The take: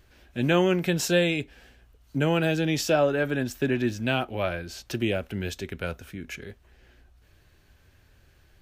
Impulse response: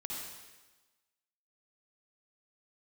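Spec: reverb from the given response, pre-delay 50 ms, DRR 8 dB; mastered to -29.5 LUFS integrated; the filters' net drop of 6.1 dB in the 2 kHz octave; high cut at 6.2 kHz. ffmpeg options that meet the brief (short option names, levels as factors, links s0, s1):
-filter_complex "[0:a]lowpass=6200,equalizer=f=2000:t=o:g=-8.5,asplit=2[s0][s1];[1:a]atrim=start_sample=2205,adelay=50[s2];[s1][s2]afir=irnorm=-1:irlink=0,volume=0.376[s3];[s0][s3]amix=inputs=2:normalize=0,volume=0.708"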